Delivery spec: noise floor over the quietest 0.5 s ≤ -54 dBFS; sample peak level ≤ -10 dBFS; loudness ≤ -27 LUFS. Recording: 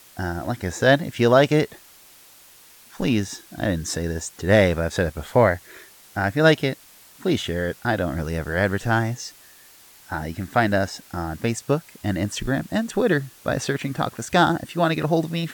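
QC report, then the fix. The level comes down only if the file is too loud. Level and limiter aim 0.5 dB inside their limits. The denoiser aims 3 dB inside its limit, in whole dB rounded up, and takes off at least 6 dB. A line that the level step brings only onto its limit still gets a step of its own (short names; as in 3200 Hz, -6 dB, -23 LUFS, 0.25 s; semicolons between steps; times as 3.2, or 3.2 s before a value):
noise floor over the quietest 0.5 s -50 dBFS: fail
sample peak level -3.0 dBFS: fail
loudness -22.5 LUFS: fail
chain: gain -5 dB; limiter -10.5 dBFS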